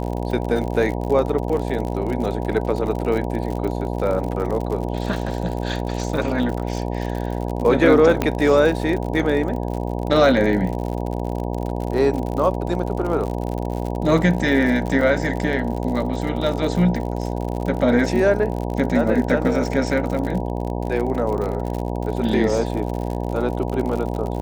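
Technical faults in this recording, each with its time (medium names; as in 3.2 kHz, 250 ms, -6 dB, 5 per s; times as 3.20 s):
buzz 60 Hz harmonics 16 -25 dBFS
crackle 62 per s -26 dBFS
8.22 s: pop -6 dBFS
15.01 s: dropout 3.6 ms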